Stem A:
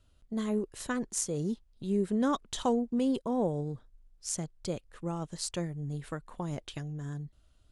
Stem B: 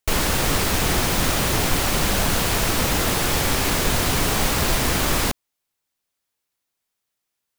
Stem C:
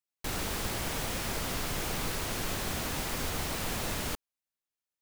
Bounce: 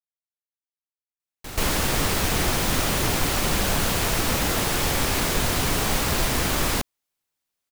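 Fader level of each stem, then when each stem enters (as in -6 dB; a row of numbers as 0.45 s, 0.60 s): mute, -2.5 dB, -2.0 dB; mute, 1.50 s, 1.20 s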